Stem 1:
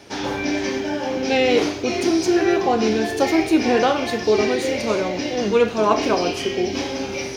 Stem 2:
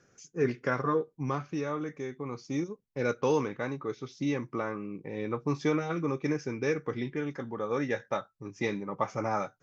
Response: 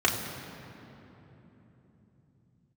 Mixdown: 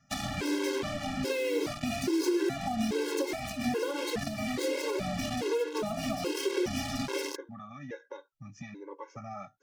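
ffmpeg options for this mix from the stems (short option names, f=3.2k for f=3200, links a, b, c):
-filter_complex "[0:a]acrusher=bits=3:mix=0:aa=0.5,acompressor=threshold=-25dB:ratio=6,volume=2.5dB[a];[1:a]alimiter=level_in=2dB:limit=-24dB:level=0:latency=1:release=398,volume=-2dB,acompressor=threshold=-40dB:ratio=2,volume=2dB[b];[a][b]amix=inputs=2:normalize=0,acrossover=split=300[c][d];[d]acompressor=threshold=-28dB:ratio=6[e];[c][e]amix=inputs=2:normalize=0,afftfilt=real='re*gt(sin(2*PI*1.2*pts/sr)*(1-2*mod(floor(b*sr/1024/280),2)),0)':imag='im*gt(sin(2*PI*1.2*pts/sr)*(1-2*mod(floor(b*sr/1024/280),2)),0)':win_size=1024:overlap=0.75"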